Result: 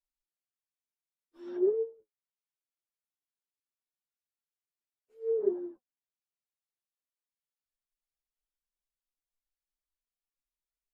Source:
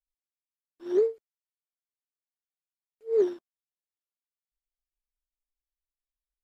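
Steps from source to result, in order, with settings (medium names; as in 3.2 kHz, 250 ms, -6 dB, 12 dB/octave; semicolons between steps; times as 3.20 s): low-pass that closes with the level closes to 710 Hz, closed at -27 dBFS; flange 1.2 Hz, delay 2.9 ms, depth 7.2 ms, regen +42%; plain phase-vocoder stretch 1.7×; trim +2 dB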